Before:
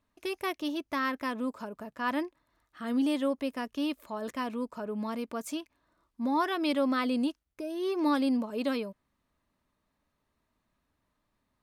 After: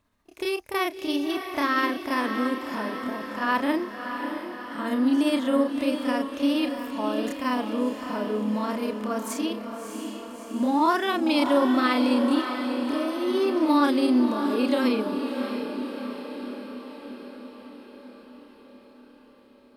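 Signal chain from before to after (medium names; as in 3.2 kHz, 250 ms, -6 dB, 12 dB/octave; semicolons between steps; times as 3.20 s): granular stretch 1.7×, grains 137 ms; echo that smears into a reverb 641 ms, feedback 62%, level -7 dB; trim +7 dB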